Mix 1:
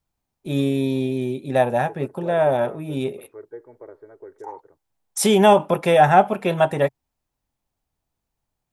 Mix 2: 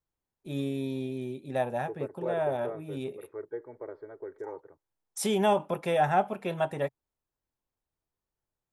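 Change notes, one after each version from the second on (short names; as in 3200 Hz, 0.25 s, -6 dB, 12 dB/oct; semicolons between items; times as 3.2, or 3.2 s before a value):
first voice -11.0 dB; second voice: remove air absorption 190 m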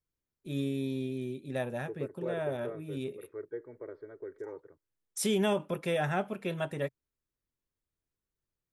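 master: add bell 810 Hz -11.5 dB 0.78 oct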